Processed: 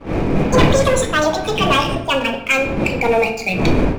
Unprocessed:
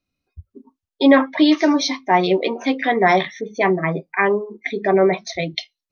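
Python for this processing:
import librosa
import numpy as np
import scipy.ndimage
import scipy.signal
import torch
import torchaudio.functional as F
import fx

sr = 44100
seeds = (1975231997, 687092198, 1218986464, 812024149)

y = fx.speed_glide(x, sr, from_pct=199, to_pct=98)
y = fx.dmg_wind(y, sr, seeds[0], corner_hz=380.0, level_db=-18.0)
y = fx.peak_eq(y, sr, hz=2400.0, db=12.5, octaves=0.29)
y = fx.leveller(y, sr, passes=3)
y = fx.room_shoebox(y, sr, seeds[1], volume_m3=290.0, walls='mixed', distance_m=0.67)
y = y * librosa.db_to_amplitude(-12.5)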